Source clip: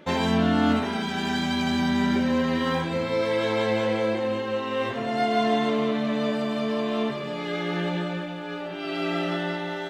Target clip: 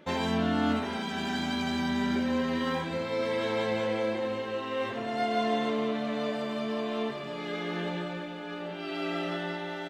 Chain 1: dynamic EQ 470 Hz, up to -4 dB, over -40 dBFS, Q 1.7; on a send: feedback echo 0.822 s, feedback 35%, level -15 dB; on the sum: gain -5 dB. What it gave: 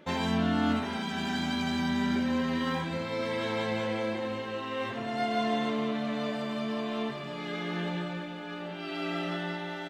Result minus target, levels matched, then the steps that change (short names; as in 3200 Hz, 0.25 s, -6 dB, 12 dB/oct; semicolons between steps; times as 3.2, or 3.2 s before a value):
125 Hz band +2.5 dB
change: dynamic EQ 140 Hz, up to -4 dB, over -40 dBFS, Q 1.7